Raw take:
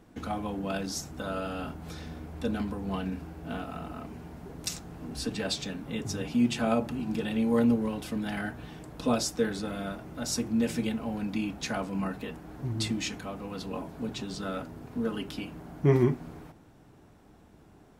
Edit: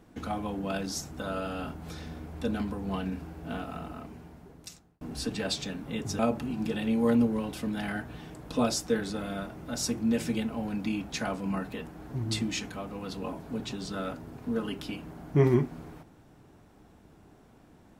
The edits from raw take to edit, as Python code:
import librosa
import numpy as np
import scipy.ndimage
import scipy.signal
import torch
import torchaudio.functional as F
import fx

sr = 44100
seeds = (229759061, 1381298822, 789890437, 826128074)

y = fx.edit(x, sr, fx.fade_out_span(start_s=3.76, length_s=1.25),
    fx.cut(start_s=6.19, length_s=0.49), tone=tone)